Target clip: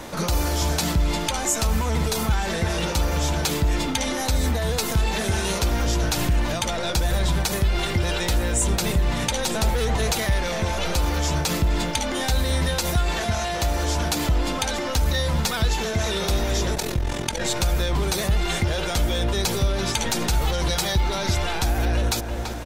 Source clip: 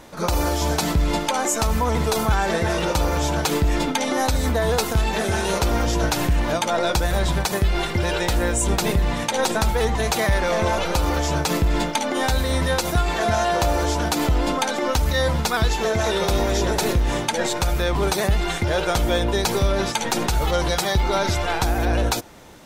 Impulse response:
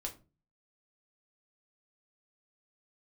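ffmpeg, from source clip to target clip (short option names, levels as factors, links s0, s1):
-filter_complex "[0:a]asplit=2[s0][s1];[s1]adelay=335,lowpass=f=3500:p=1,volume=0.178,asplit=2[s2][s3];[s3]adelay=335,lowpass=f=3500:p=1,volume=0.46,asplit=2[s4][s5];[s5]adelay=335,lowpass=f=3500:p=1,volume=0.46,asplit=2[s6][s7];[s7]adelay=335,lowpass=f=3500:p=1,volume=0.46[s8];[s2][s4][s6][s8]amix=inputs=4:normalize=0[s9];[s0][s9]amix=inputs=2:normalize=0,acompressor=threshold=0.0316:ratio=2.5,asettb=1/sr,asplit=3[s10][s11][s12];[s10]atrim=end=9.544[s13];[s11]atrim=start=9.54:end=10.12,asetpts=PTS-STARTPTS,afade=t=in:d=0.004:c=qsin,afade=t=out:st=0.576:d=0.004:c=qsin,equalizer=f=530:w=0.92:g=9.5[s14];[s12]atrim=start=10.116[s15];[s13][s14]acrossfade=d=0.004:c1=hsin:c2=qsin[s16];[s16][s15]acrossfade=d=0.004:c1=qsin:c2=hsin,asettb=1/sr,asplit=3[s17][s18][s19];[s17]atrim=end=16.754[s20];[s18]atrim=start=16.75:end=17.41,asetpts=PTS-STARTPTS,afade=t=in:d=0.004:c=qsin,afade=t=out:st=0.656:d=0.004:c=qsin,tremolo=f=43:d=0.824[s21];[s19]atrim=start=17.406[s22];[s20][s21]acrossfade=d=0.004:c1=hsin:c2=qsin[s23];[s23][s22]acrossfade=d=0.004:c1=qsin:c2=hsin,acrossover=split=210|2200[s24][s25][s26];[s25]asoftclip=type=tanh:threshold=0.0168[s27];[s24][s27][s26]amix=inputs=3:normalize=0,volume=2.66"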